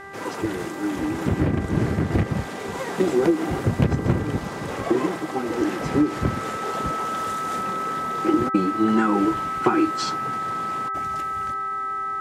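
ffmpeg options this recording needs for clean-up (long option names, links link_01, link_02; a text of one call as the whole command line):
ffmpeg -i in.wav -af "bandreject=frequency=394.6:width_type=h:width=4,bandreject=frequency=789.2:width_type=h:width=4,bandreject=frequency=1183.8:width_type=h:width=4,bandreject=frequency=1578.4:width_type=h:width=4,bandreject=frequency=1973:width_type=h:width=4,bandreject=frequency=1300:width=30" out.wav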